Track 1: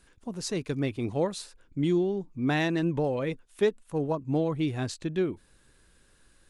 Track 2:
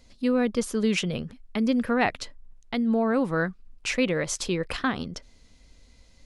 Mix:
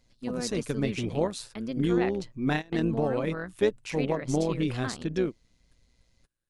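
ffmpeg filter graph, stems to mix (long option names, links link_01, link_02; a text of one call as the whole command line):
ffmpeg -i stem1.wav -i stem2.wav -filter_complex "[0:a]volume=2.5dB[link_01];[1:a]volume=-8dB,asplit=2[link_02][link_03];[link_03]apad=whole_len=286478[link_04];[link_01][link_04]sidechaingate=range=-27dB:threshold=-55dB:ratio=16:detection=peak[link_05];[link_05][link_02]amix=inputs=2:normalize=0,tremolo=f=120:d=0.571" out.wav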